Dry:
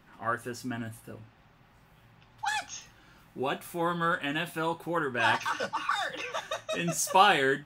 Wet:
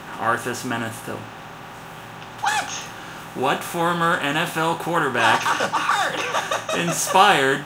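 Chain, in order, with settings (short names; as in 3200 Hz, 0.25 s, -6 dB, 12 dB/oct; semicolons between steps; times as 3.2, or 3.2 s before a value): per-bin compression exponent 0.6; bit-crush 11-bit; gain +5 dB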